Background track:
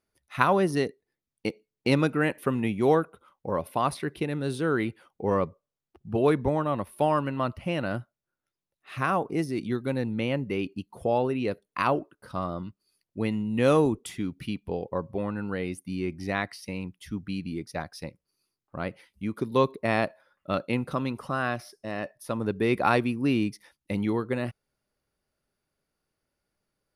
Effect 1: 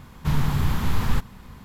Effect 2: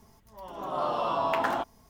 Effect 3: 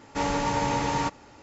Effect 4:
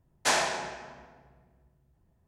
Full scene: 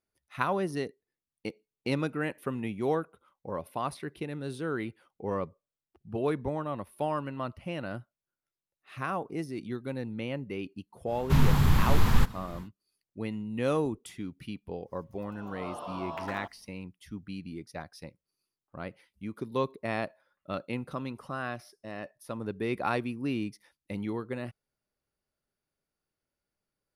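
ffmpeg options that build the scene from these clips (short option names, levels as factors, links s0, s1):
-filter_complex "[0:a]volume=0.447[s0];[1:a]atrim=end=1.64,asetpts=PTS-STARTPTS,afade=t=in:d=0.1,afade=t=out:st=1.54:d=0.1,adelay=11050[s1];[2:a]atrim=end=1.89,asetpts=PTS-STARTPTS,volume=0.282,afade=t=in:d=0.1,afade=t=out:st=1.79:d=0.1,adelay=14840[s2];[s0][s1][s2]amix=inputs=3:normalize=0"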